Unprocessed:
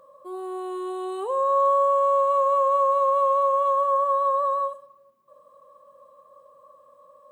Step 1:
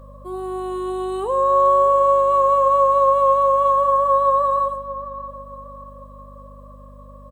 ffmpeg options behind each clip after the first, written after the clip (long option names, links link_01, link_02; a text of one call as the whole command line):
ffmpeg -i in.wav -filter_complex "[0:a]aeval=exprs='val(0)+0.00501*(sin(2*PI*50*n/s)+sin(2*PI*2*50*n/s)/2+sin(2*PI*3*50*n/s)/3+sin(2*PI*4*50*n/s)/4+sin(2*PI*5*50*n/s)/5)':channel_layout=same,asplit=2[link_01][link_02];[link_02]adelay=624,lowpass=frequency=2000:poles=1,volume=-13dB,asplit=2[link_03][link_04];[link_04]adelay=624,lowpass=frequency=2000:poles=1,volume=0.43,asplit=2[link_05][link_06];[link_06]adelay=624,lowpass=frequency=2000:poles=1,volume=0.43,asplit=2[link_07][link_08];[link_08]adelay=624,lowpass=frequency=2000:poles=1,volume=0.43[link_09];[link_01][link_03][link_05][link_07][link_09]amix=inputs=5:normalize=0,volume=5dB" out.wav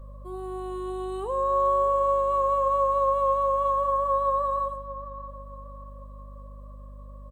ffmpeg -i in.wav -af "lowshelf=frequency=92:gain=12,volume=-8dB" out.wav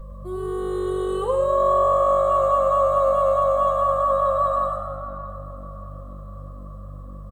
ffmpeg -i in.wav -filter_complex "[0:a]bandreject=frequency=2400:width=12,aecho=1:1:6:0.75,asplit=2[link_01][link_02];[link_02]asplit=7[link_03][link_04][link_05][link_06][link_07][link_08][link_09];[link_03]adelay=101,afreqshift=48,volume=-7dB[link_10];[link_04]adelay=202,afreqshift=96,volume=-12.2dB[link_11];[link_05]adelay=303,afreqshift=144,volume=-17.4dB[link_12];[link_06]adelay=404,afreqshift=192,volume=-22.6dB[link_13];[link_07]adelay=505,afreqshift=240,volume=-27.8dB[link_14];[link_08]adelay=606,afreqshift=288,volume=-33dB[link_15];[link_09]adelay=707,afreqshift=336,volume=-38.2dB[link_16];[link_10][link_11][link_12][link_13][link_14][link_15][link_16]amix=inputs=7:normalize=0[link_17];[link_01][link_17]amix=inputs=2:normalize=0,volume=4.5dB" out.wav